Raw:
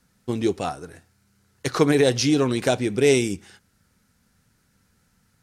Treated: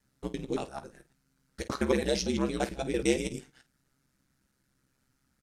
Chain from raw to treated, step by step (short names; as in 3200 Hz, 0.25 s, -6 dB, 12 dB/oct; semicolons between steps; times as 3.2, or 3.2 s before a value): local time reversal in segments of 0.113 s; ring modulator 66 Hz; early reflections 15 ms -10 dB, 50 ms -14.5 dB; gain -7 dB